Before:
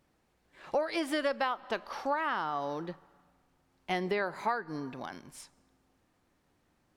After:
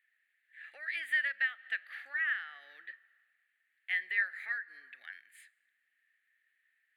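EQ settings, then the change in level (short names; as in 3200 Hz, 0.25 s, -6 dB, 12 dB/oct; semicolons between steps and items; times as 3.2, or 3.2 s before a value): resonant high-pass 1800 Hz, resonance Q 10; fixed phaser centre 2400 Hz, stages 4; -6.5 dB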